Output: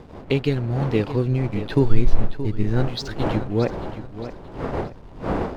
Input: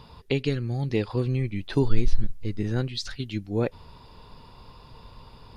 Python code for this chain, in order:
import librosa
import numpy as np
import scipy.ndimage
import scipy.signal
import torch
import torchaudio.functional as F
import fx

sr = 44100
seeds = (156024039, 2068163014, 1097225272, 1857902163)

p1 = fx.dmg_wind(x, sr, seeds[0], corner_hz=600.0, level_db=-36.0)
p2 = fx.backlash(p1, sr, play_db=-41.0)
p3 = fx.high_shelf(p2, sr, hz=4400.0, db=-6.0)
p4 = p3 + fx.echo_feedback(p3, sr, ms=625, feedback_pct=34, wet_db=-12.0, dry=0)
y = p4 * librosa.db_to_amplitude(4.5)